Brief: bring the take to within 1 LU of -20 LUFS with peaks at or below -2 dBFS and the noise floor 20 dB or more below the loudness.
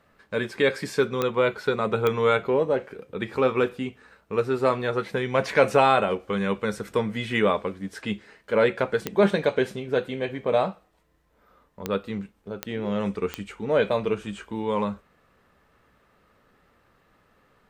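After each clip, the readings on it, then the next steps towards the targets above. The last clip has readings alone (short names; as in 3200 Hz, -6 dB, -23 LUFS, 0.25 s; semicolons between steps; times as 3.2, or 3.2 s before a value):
clicks 6; loudness -25.5 LUFS; peak -4.5 dBFS; loudness target -20.0 LUFS
-> de-click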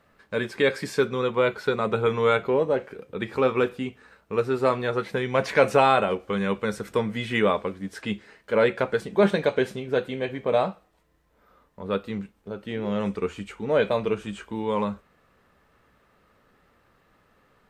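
clicks 0; loudness -25.5 LUFS; peak -4.5 dBFS; loudness target -20.0 LUFS
-> gain +5.5 dB; limiter -2 dBFS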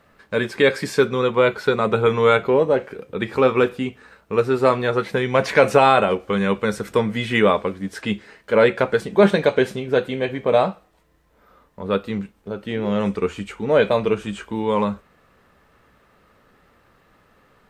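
loudness -20.0 LUFS; peak -2.0 dBFS; noise floor -59 dBFS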